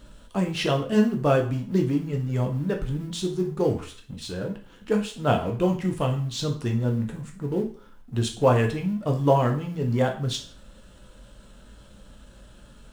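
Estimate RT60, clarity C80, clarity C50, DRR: 0.45 s, 15.0 dB, 10.0 dB, 2.0 dB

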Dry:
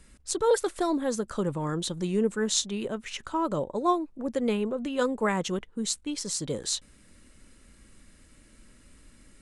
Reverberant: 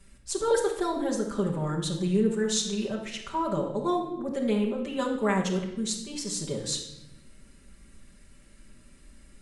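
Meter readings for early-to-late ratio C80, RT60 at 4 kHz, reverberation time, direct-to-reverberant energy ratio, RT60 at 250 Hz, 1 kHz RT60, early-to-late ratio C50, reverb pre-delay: 9.0 dB, 0.80 s, 0.85 s, -3.5 dB, 1.4 s, 0.75 s, 5.5 dB, 5 ms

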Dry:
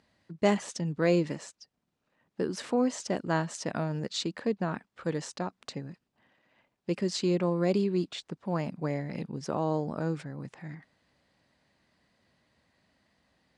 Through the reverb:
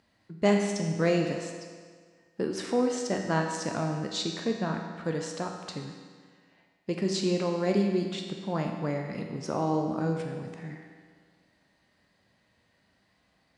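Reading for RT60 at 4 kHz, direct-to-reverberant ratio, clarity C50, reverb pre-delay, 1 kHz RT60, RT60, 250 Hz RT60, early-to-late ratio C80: 1.6 s, 1.5 dB, 4.0 dB, 10 ms, 1.7 s, 1.7 s, 1.7 s, 5.5 dB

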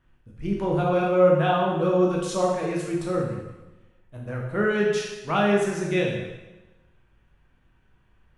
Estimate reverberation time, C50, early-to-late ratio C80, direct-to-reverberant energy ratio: 1.1 s, 2.0 dB, 4.5 dB, -3.0 dB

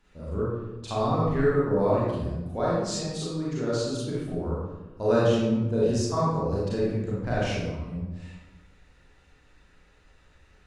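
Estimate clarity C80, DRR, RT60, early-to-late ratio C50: 1.0 dB, -8.5 dB, 1.0 s, -3.0 dB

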